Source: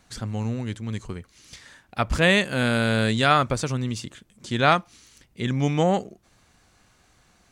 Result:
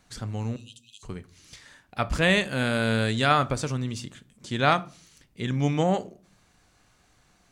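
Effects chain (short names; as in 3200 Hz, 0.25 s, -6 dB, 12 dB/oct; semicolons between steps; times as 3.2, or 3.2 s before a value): 0.56–1.03 brick-wall FIR high-pass 2500 Hz; shoebox room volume 300 m³, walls furnished, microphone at 0.37 m; gain -3 dB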